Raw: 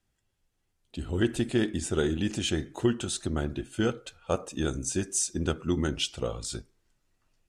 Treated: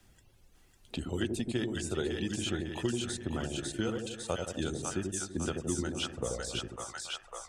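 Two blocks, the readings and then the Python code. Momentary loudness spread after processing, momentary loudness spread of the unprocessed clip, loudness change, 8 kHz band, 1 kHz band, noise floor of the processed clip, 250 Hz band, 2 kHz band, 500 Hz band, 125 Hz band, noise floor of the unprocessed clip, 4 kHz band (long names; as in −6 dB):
5 LU, 7 LU, −5.5 dB, −5.0 dB, −2.5 dB, −63 dBFS, −5.0 dB, −3.0 dB, −4.5 dB, −5.0 dB, −77 dBFS, −3.0 dB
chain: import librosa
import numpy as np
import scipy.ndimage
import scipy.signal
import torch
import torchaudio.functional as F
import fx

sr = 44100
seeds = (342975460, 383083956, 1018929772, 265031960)

p1 = fx.dereverb_blind(x, sr, rt60_s=1.1)
p2 = p1 + fx.echo_split(p1, sr, split_hz=760.0, low_ms=83, high_ms=551, feedback_pct=52, wet_db=-3.5, dry=0)
p3 = fx.band_squash(p2, sr, depth_pct=70)
y = p3 * librosa.db_to_amplitude(-6.0)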